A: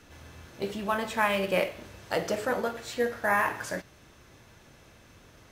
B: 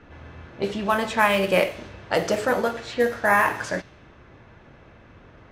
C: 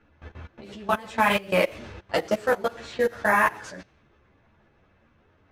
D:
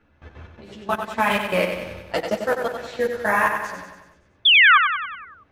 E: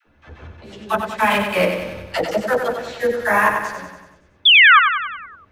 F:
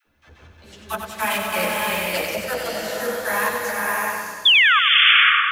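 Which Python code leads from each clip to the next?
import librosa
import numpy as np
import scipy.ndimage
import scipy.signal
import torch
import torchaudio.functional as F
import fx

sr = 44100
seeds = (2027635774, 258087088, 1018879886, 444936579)

y1 = fx.env_lowpass(x, sr, base_hz=1900.0, full_db=-24.5)
y1 = F.gain(torch.from_numpy(y1), 6.5).numpy()
y2 = fx.level_steps(y1, sr, step_db=21)
y2 = fx.ensemble(y2, sr)
y2 = F.gain(torch.from_numpy(y2), 4.5).numpy()
y3 = fx.spec_paint(y2, sr, seeds[0], shape='fall', start_s=4.45, length_s=0.33, low_hz=1100.0, high_hz=3600.0, level_db=-13.0)
y3 = fx.echo_feedback(y3, sr, ms=94, feedback_pct=56, wet_db=-6.5)
y4 = fx.dispersion(y3, sr, late='lows', ms=62.0, hz=610.0)
y4 = F.gain(torch.from_numpy(y4), 3.5).numpy()
y5 = scipy.signal.lfilter([1.0, -0.8], [1.0], y4)
y5 = fx.rev_bloom(y5, sr, seeds[1], attack_ms=610, drr_db=-1.5)
y5 = F.gain(torch.from_numpy(y5), 4.5).numpy()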